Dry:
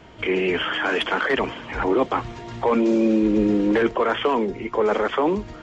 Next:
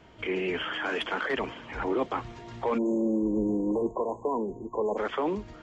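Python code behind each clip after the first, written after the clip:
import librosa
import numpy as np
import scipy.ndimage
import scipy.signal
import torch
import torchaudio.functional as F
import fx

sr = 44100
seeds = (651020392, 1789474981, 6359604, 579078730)

y = fx.spec_erase(x, sr, start_s=2.78, length_s=2.19, low_hz=1100.0, high_hz=6300.0)
y = y * librosa.db_to_amplitude(-8.0)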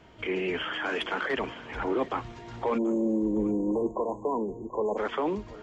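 y = x + 10.0 ** (-19.5 / 20.0) * np.pad(x, (int(733 * sr / 1000.0), 0))[:len(x)]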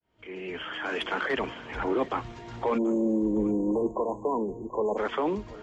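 y = fx.fade_in_head(x, sr, length_s=1.15)
y = y * librosa.db_to_amplitude(1.0)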